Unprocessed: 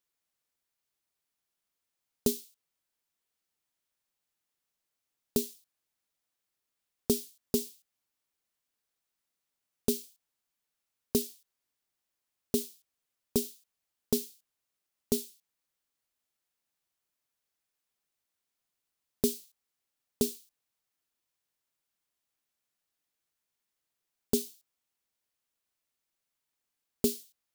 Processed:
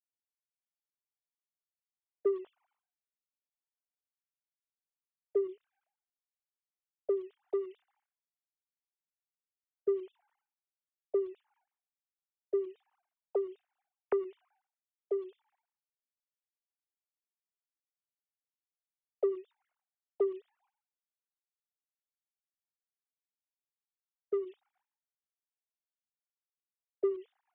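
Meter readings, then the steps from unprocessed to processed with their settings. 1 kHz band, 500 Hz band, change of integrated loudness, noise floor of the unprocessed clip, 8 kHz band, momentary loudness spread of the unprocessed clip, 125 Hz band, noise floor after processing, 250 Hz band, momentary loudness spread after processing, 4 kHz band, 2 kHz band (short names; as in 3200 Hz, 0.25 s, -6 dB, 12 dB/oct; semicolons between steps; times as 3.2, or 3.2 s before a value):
+3.5 dB, +3.0 dB, -3.0 dB, under -85 dBFS, under -40 dB, 12 LU, under -30 dB, under -85 dBFS, -8.0 dB, 11 LU, under -25 dB, n/a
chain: sine-wave speech; sample leveller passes 3; Bessel low-pass 720 Hz, order 2; compressor, threshold -26 dBFS, peak gain reduction 7 dB; rotary speaker horn 0.75 Hz, later 7 Hz, at 16.59; sustainer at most 120 dB/s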